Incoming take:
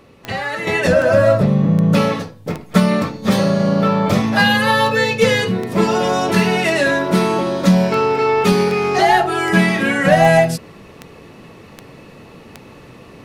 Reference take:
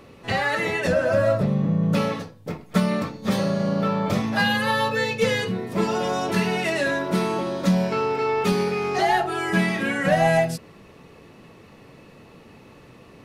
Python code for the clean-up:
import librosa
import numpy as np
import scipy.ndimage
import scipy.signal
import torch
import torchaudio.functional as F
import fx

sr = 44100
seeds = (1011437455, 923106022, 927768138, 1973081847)

y = fx.fix_declick_ar(x, sr, threshold=10.0)
y = fx.gain(y, sr, db=fx.steps((0.0, 0.0), (0.67, -7.5)))